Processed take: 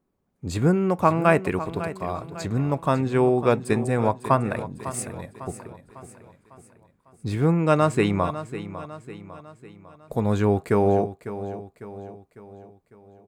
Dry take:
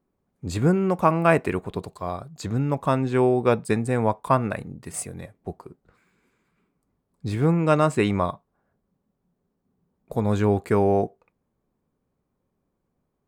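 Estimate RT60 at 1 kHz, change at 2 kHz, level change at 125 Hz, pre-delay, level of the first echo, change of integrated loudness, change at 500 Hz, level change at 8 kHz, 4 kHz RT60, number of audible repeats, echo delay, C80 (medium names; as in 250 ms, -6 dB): no reverb, +0.5 dB, +0.5 dB, no reverb, -13.0 dB, 0.0 dB, +0.5 dB, +0.5 dB, no reverb, 4, 551 ms, no reverb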